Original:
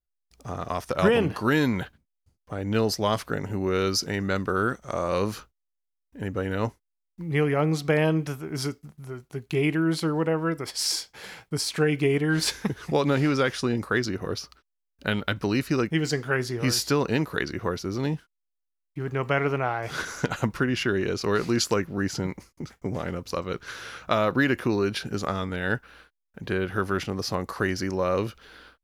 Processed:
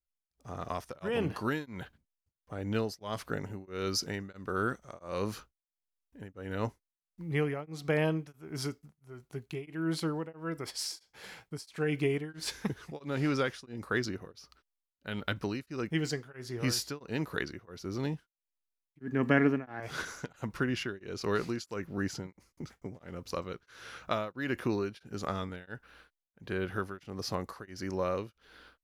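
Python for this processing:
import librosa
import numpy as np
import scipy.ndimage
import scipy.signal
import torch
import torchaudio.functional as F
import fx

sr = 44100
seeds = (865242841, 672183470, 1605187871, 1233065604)

y = fx.small_body(x, sr, hz=(250.0, 1700.0), ring_ms=45, db=18, at=(19.01, 19.8))
y = y * np.abs(np.cos(np.pi * 1.5 * np.arange(len(y)) / sr))
y = y * librosa.db_to_amplitude(-6.0)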